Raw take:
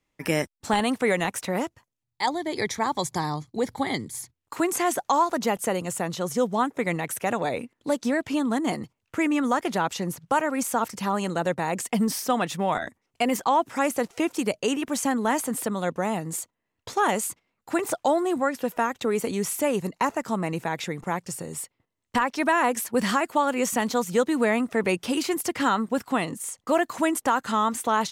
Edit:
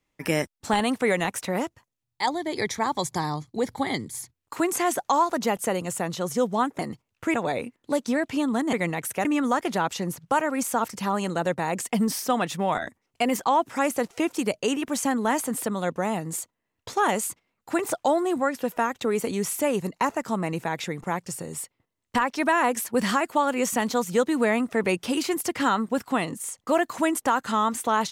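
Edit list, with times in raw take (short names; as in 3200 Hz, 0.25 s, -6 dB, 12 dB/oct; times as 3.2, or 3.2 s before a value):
6.79–7.31 swap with 8.7–9.25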